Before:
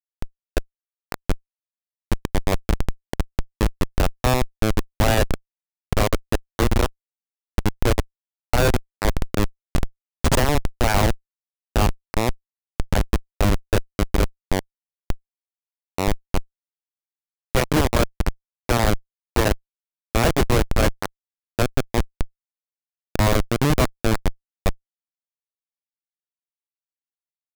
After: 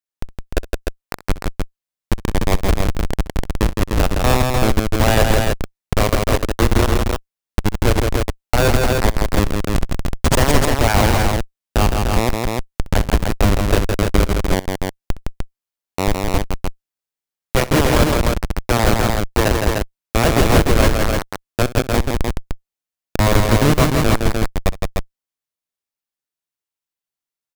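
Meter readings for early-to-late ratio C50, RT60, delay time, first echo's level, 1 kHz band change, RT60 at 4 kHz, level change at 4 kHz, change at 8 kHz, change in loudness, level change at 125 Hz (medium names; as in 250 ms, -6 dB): no reverb, no reverb, 64 ms, -17.5 dB, +5.5 dB, no reverb, +5.5 dB, +5.5 dB, +5.0 dB, +5.5 dB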